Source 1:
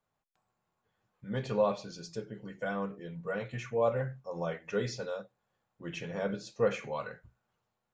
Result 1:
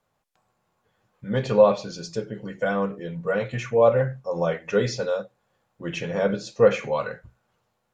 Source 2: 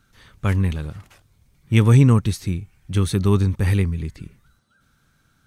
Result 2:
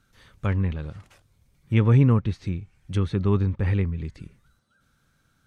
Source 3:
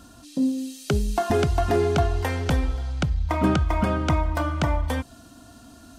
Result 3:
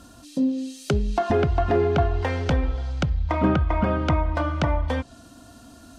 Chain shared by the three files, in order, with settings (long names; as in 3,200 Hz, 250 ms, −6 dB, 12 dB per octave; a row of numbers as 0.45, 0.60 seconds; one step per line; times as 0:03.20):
treble cut that deepens with the level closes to 2,600 Hz, closed at −17.5 dBFS
parametric band 530 Hz +3.5 dB 0.32 octaves
loudness normalisation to −24 LKFS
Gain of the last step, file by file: +9.5, −4.5, +0.5 decibels